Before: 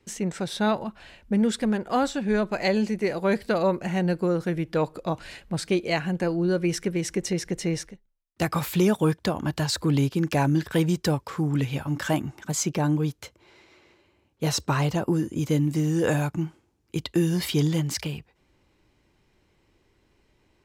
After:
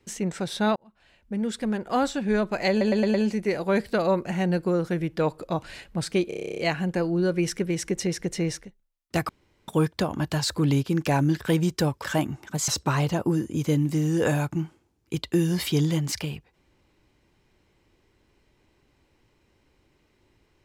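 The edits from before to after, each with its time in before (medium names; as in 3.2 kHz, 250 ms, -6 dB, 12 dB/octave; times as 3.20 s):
0.76–2.03 s: fade in
2.70 s: stutter 0.11 s, 5 plays
5.84 s: stutter 0.03 s, 11 plays
8.55–8.94 s: room tone
11.30–11.99 s: delete
12.63–14.50 s: delete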